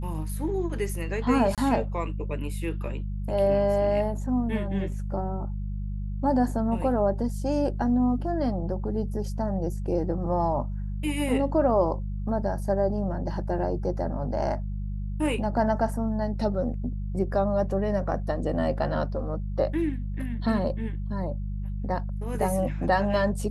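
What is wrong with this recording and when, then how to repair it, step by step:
hum 50 Hz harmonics 4 -31 dBFS
1.55–1.58 gap 27 ms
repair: de-hum 50 Hz, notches 4; interpolate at 1.55, 27 ms

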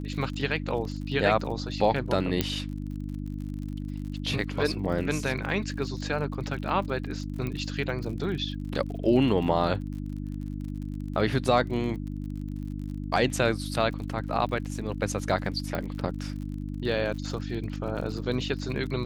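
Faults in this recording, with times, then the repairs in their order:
crackle 46/s -37 dBFS
hum 50 Hz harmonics 6 -34 dBFS
2.41 pop -9 dBFS
7.47 pop -20 dBFS
15.75 pop -18 dBFS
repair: de-click; de-hum 50 Hz, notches 6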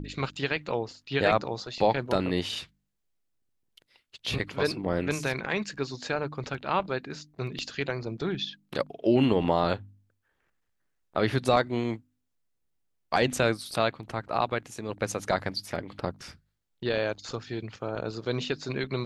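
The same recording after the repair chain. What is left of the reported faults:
7.47 pop
15.75 pop

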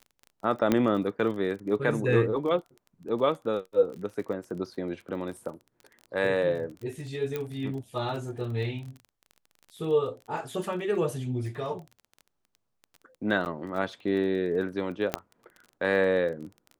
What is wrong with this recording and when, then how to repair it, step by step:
crackle 26/s -37 dBFS
0.72 pop -10 dBFS
7.36 pop -18 dBFS
13.45–13.46 gap 9.9 ms
15.14 pop -10 dBFS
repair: de-click; interpolate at 13.45, 9.9 ms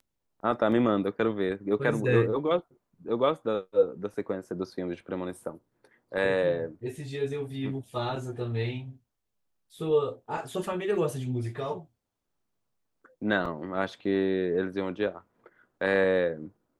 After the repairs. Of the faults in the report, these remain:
0.72 pop
7.36 pop

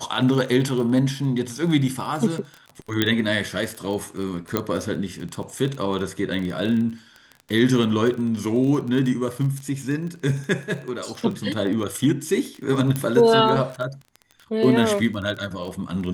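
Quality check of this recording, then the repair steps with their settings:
crackle 21/s -28 dBFS
3.02 pop -5 dBFS
4.57 pop -7 dBFS
12.96 pop -11 dBFS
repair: de-click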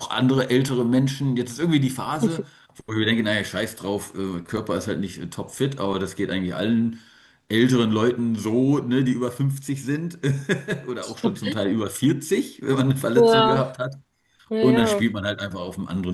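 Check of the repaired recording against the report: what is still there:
4.57 pop

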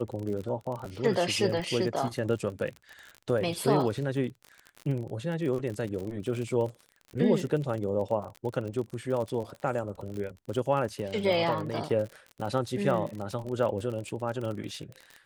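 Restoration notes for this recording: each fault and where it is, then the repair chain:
crackle 42/s -34 dBFS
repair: de-click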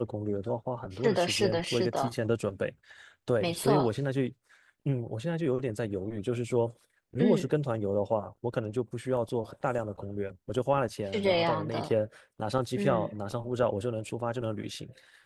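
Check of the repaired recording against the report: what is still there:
none

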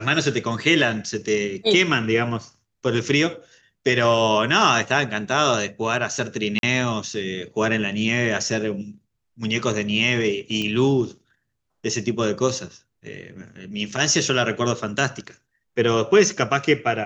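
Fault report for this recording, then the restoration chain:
6.59–6.63 gap 42 ms
10.62 pop -14 dBFS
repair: de-click; interpolate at 6.59, 42 ms

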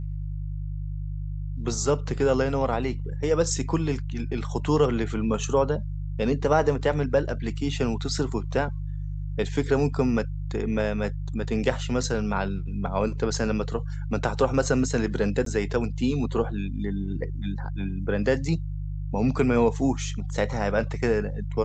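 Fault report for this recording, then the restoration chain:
hum 50 Hz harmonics 3 -31 dBFS
15.45–15.46 gap 13 ms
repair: de-hum 50 Hz, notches 3; interpolate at 15.45, 13 ms

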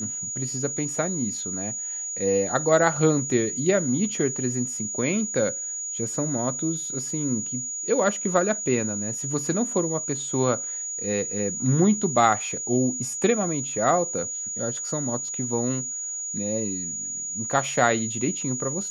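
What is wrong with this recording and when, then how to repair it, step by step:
tone 6800 Hz -29 dBFS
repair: notch 6800 Hz, Q 30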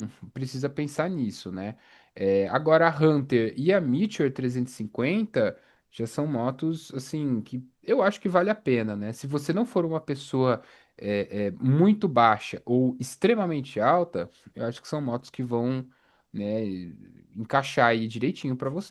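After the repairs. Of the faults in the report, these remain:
none

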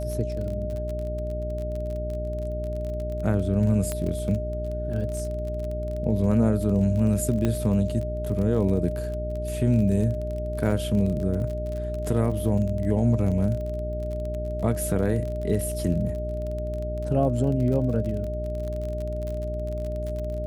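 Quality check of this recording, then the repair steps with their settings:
crackle 34/s -31 dBFS
hum 60 Hz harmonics 7 -31 dBFS
tone 610 Hz -31 dBFS
3.92 pop -14 dBFS
7.45 pop -13 dBFS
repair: de-click; de-hum 60 Hz, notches 7; notch 610 Hz, Q 30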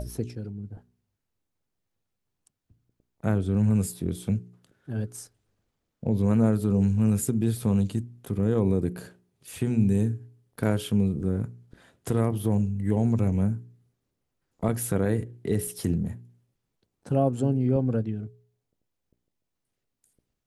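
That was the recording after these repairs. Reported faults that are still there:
none

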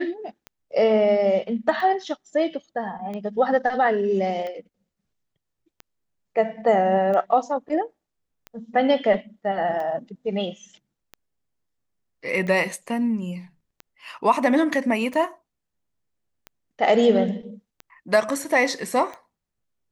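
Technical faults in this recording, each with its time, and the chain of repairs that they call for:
tick 45 rpm -22 dBFS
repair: de-click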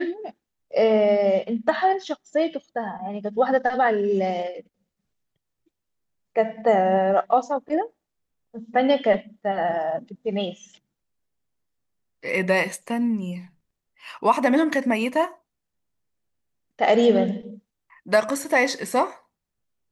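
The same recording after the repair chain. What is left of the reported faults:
none

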